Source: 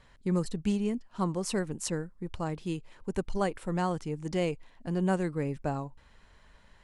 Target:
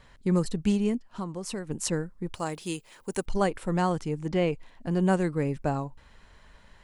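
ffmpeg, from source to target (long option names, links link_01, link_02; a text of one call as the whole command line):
ffmpeg -i in.wav -filter_complex "[0:a]asplit=3[link_01][link_02][link_03];[link_01]afade=type=out:start_time=0.96:duration=0.02[link_04];[link_02]acompressor=threshold=-38dB:ratio=3,afade=type=in:start_time=0.96:duration=0.02,afade=type=out:start_time=1.69:duration=0.02[link_05];[link_03]afade=type=in:start_time=1.69:duration=0.02[link_06];[link_04][link_05][link_06]amix=inputs=3:normalize=0,asettb=1/sr,asplit=3[link_07][link_08][link_09];[link_07]atrim=end=2.344[link_10];[link_08]atrim=start=2.34:end=3.26,asetpts=PTS-STARTPTS,afade=type=in:duration=0.004:curve=qsin,afade=type=out:start_time=0.916:duration=0.004:curve=qsin,aemphasis=mode=production:type=bsi[link_11];[link_09]atrim=start=3.256[link_12];[link_10][link_11]acrossfade=duration=0.004:curve1=hsin:curve2=qsin[link_13];[link_13][link_12]acrossfade=duration=0.004:curve1=qsin:curve2=hsin,asettb=1/sr,asplit=3[link_14][link_15][link_16];[link_14]atrim=end=4.194[link_17];[link_15]atrim=start=4.19:end=4.91,asetpts=PTS-STARTPTS,afade=type=in:duration=0.004:curve=qsin,afade=type=out:start_time=0.716:duration=0.004:curve=qsin,acrossover=split=3900[link_18][link_19];[link_19]acompressor=threshold=-60dB:ratio=4:attack=1:release=60[link_20];[link_18][link_20]amix=inputs=2:normalize=0[link_21];[link_16]atrim=start=4.906[link_22];[link_17][link_21]acrossfade=duration=0.004:curve1=hsin:curve2=qsin[link_23];[link_23][link_22]acrossfade=duration=0.004:curve1=qsin:curve2=hsin,volume=4dB" out.wav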